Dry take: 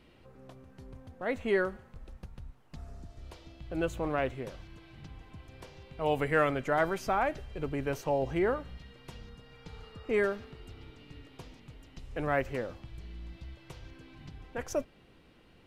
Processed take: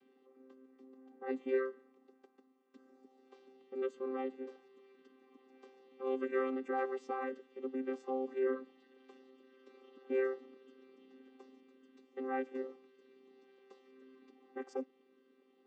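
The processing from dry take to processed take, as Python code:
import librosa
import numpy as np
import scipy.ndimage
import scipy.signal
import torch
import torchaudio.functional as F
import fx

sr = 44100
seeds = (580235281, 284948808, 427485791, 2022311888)

y = fx.chord_vocoder(x, sr, chord='bare fifth', root=60)
y = y * librosa.db_to_amplitude(-5.5)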